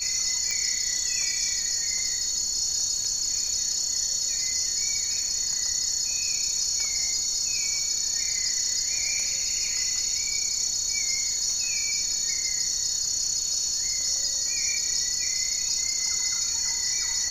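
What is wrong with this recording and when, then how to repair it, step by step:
crackle 27/s -34 dBFS
tone 4400 Hz -32 dBFS
0.51 pop -14 dBFS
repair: de-click; notch 4400 Hz, Q 30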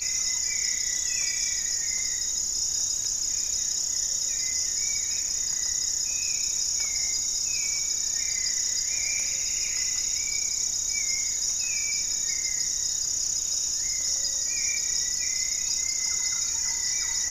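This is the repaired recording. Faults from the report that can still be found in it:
none

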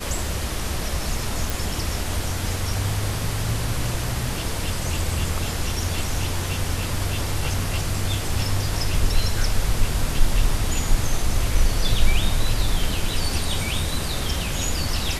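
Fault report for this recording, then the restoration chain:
1.5 pop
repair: de-click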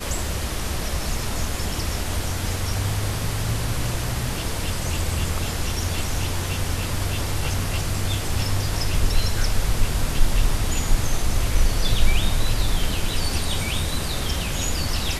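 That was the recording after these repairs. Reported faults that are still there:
none

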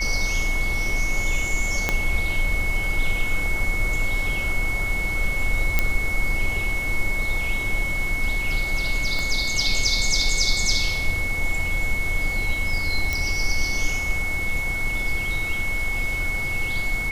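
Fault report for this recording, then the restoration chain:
tone 2200 Hz -25 dBFS
1.89 pop -6 dBFS
5.79 pop -5 dBFS
9.19 pop
13.13 pop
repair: de-click; notch 2200 Hz, Q 30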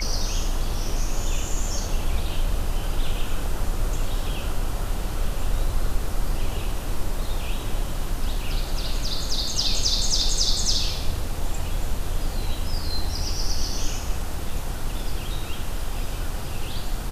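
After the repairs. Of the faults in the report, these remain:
1.89 pop
9.19 pop

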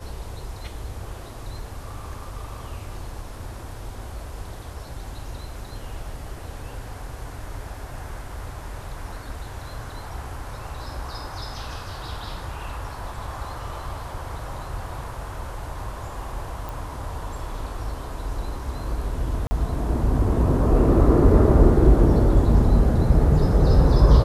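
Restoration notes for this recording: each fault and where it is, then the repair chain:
16.69 pop
19.47–19.51 gap 40 ms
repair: de-click; interpolate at 19.47, 40 ms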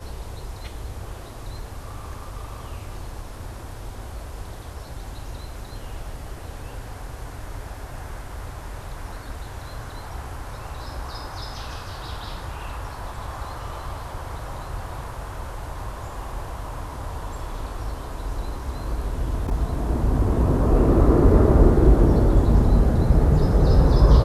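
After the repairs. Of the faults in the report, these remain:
none

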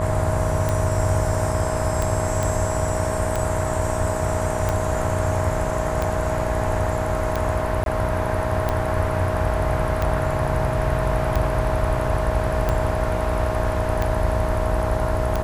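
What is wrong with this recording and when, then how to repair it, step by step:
buzz 60 Hz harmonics 18 -28 dBFS
tick 45 rpm -10 dBFS
tone 630 Hz -26 dBFS
2.43 pop
7.84–7.86 gap 22 ms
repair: de-click; de-hum 60 Hz, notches 18; notch 630 Hz, Q 30; interpolate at 7.84, 22 ms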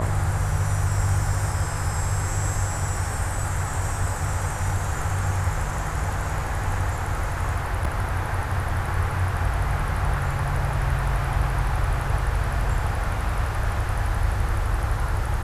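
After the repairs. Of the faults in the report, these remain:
none

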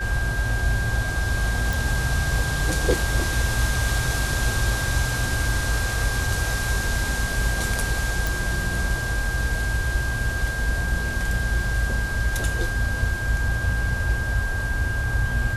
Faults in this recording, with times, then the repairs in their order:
tone 1600 Hz -28 dBFS
1.73 pop
8.27 pop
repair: de-click; notch 1600 Hz, Q 30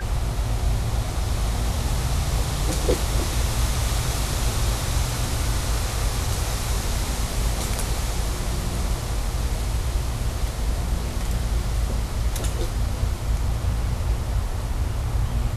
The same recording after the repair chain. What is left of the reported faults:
8.27 pop

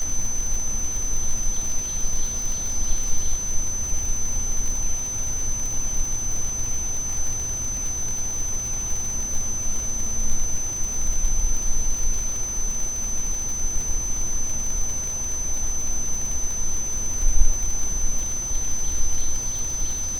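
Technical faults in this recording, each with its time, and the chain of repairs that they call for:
crackle 60/s -26 dBFS
tone 6100 Hz -26 dBFS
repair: de-click; notch 6100 Hz, Q 30

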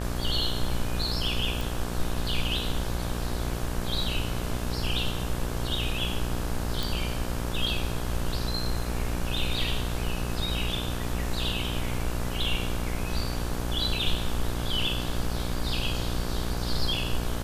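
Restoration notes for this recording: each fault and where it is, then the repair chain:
buzz 60 Hz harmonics 29 -32 dBFS
1.61 pop
6.83 pop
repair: de-click; de-hum 60 Hz, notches 29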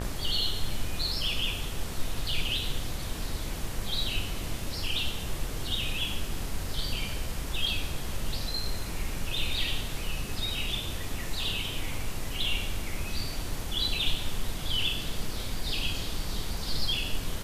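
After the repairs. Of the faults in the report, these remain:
none

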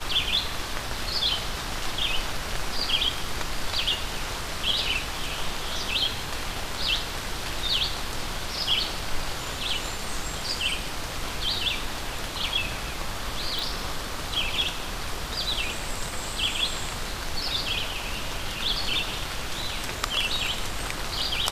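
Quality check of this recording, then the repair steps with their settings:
13.59 pop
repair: de-click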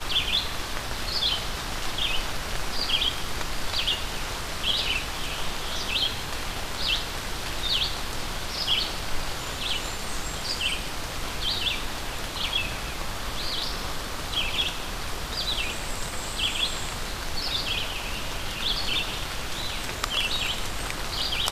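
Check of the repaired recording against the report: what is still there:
none

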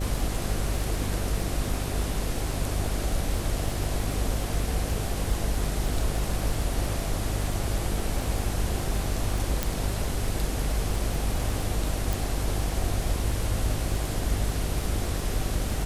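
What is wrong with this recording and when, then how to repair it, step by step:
buzz 50 Hz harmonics 12 -31 dBFS
crackle 23/s -30 dBFS
9.63 pop
12.13 pop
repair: de-click; de-hum 50 Hz, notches 12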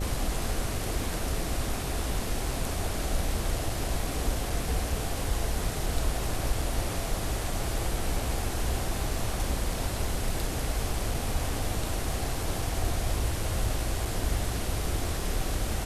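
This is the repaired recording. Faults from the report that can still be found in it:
12.13 pop

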